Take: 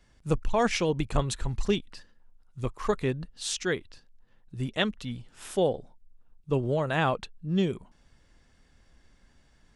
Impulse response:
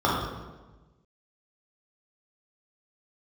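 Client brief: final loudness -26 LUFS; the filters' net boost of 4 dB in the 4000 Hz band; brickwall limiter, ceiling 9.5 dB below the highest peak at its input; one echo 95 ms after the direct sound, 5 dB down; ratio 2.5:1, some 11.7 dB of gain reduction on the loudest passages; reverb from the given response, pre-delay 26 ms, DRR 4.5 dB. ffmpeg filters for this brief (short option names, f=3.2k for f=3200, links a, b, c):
-filter_complex "[0:a]equalizer=f=4k:t=o:g=5,acompressor=threshold=-38dB:ratio=2.5,alimiter=level_in=5.5dB:limit=-24dB:level=0:latency=1,volume=-5.5dB,aecho=1:1:95:0.562,asplit=2[a][b];[1:a]atrim=start_sample=2205,adelay=26[c];[b][c]afir=irnorm=-1:irlink=0,volume=-23dB[d];[a][d]amix=inputs=2:normalize=0,volume=12.5dB"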